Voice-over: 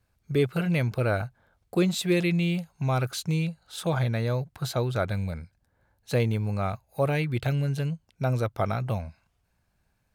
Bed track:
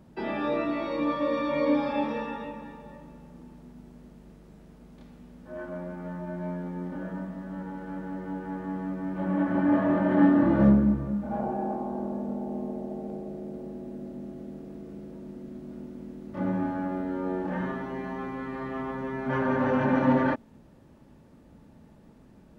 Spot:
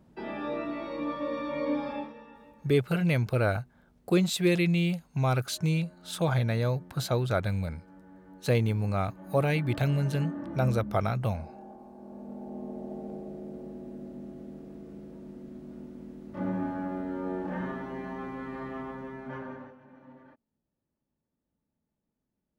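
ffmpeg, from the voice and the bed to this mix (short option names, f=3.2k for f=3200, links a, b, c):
-filter_complex "[0:a]adelay=2350,volume=-0.5dB[a];[1:a]volume=8dB,afade=t=out:st=1.91:d=0.22:silence=0.281838,afade=t=in:st=11.97:d=0.96:silence=0.211349,afade=t=out:st=18.61:d=1.14:silence=0.0421697[b];[a][b]amix=inputs=2:normalize=0"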